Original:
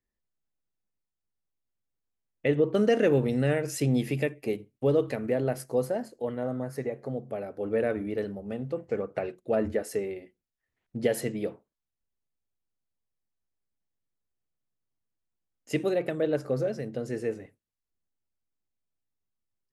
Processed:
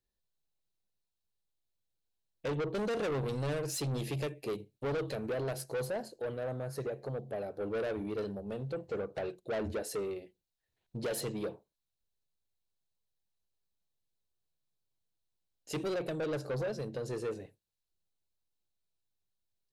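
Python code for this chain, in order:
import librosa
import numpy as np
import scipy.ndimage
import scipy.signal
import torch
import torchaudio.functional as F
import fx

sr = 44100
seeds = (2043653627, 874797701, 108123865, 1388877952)

y = fx.graphic_eq_31(x, sr, hz=(250, 1250, 2000, 4000), db=(-10, -7, -9, 8))
y = 10.0 ** (-31.0 / 20.0) * np.tanh(y / 10.0 ** (-31.0 / 20.0))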